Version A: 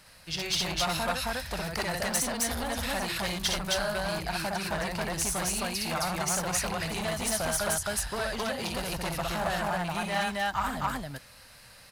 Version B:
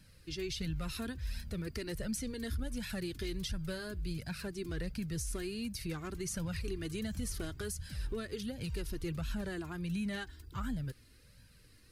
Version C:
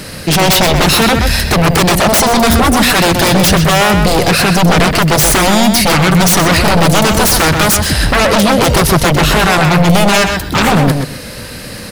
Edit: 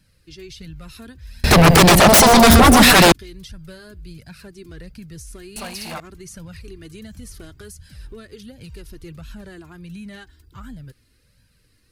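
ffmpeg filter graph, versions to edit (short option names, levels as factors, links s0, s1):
-filter_complex "[1:a]asplit=3[s0][s1][s2];[s0]atrim=end=1.442[s3];[2:a]atrim=start=1.438:end=3.122[s4];[s1]atrim=start=3.118:end=5.562[s5];[0:a]atrim=start=5.558:end=6.002[s6];[s2]atrim=start=5.998[s7];[s3][s4]acrossfade=d=0.004:c1=hsin:c2=hsin[s8];[s8][s5]acrossfade=d=0.004:c1=hsin:c2=hsin[s9];[s9][s6]acrossfade=d=0.004:c1=hsin:c2=hsin[s10];[s10][s7]acrossfade=d=0.004:c1=hsin:c2=hsin"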